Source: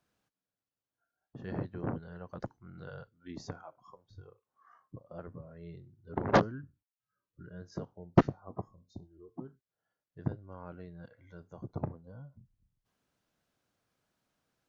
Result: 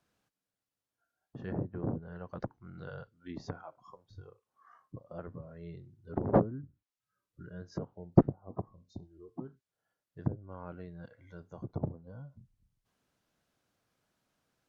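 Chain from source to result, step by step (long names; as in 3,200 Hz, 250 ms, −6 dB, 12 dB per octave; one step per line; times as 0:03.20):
treble cut that deepens with the level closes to 640 Hz, closed at −33 dBFS
level +1.5 dB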